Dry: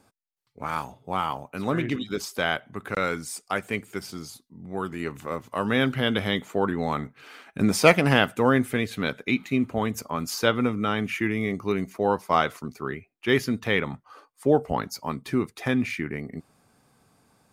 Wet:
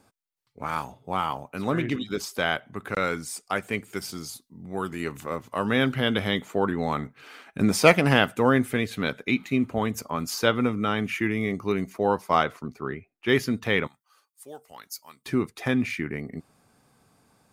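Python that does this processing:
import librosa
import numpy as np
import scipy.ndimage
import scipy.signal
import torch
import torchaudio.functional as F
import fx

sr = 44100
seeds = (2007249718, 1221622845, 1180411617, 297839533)

y = fx.high_shelf(x, sr, hz=4100.0, db=6.0, at=(3.93, 5.24))
y = fx.high_shelf(y, sr, hz=3500.0, db=-10.0, at=(12.43, 13.26))
y = fx.pre_emphasis(y, sr, coefficient=0.97, at=(13.87, 15.26))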